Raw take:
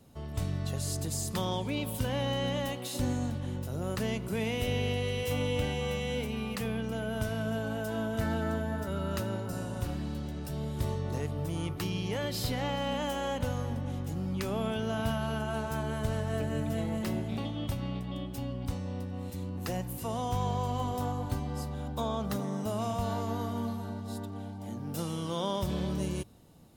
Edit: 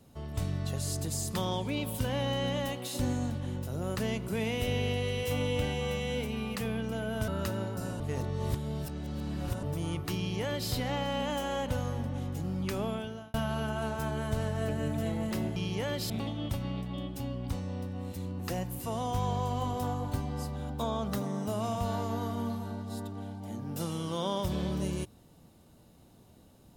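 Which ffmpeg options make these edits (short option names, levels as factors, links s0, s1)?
-filter_complex "[0:a]asplit=7[s0][s1][s2][s3][s4][s5][s6];[s0]atrim=end=7.282[s7];[s1]atrim=start=8.998:end=9.722[s8];[s2]atrim=start=9.718:end=11.352,asetpts=PTS-STARTPTS,areverse[s9];[s3]atrim=start=11.348:end=15.06,asetpts=PTS-STARTPTS,afade=t=out:st=3.172:d=0.54[s10];[s4]atrim=start=15.06:end=17.282,asetpts=PTS-STARTPTS,afade=t=in:d=0.004:c=hsin[s11];[s5]atrim=start=11.888:end=12.432[s12];[s6]atrim=start=17.278[s13];[s7][s8]acrossfade=d=0.004:c1=hsin:c2=hsin[s14];[s14][s9]acrossfade=d=0.004:c1=hsin:c2=hsin[s15];[s10][s11]concat=n=2:v=0:a=1[s16];[s15][s16]acrossfade=d=0.004:c1=hsin:c2=hsin[s17];[s17][s12]acrossfade=d=0.004:c1=hsin:c2=hsin[s18];[s18][s13]acrossfade=d=0.004:c1=hsin:c2=hsin"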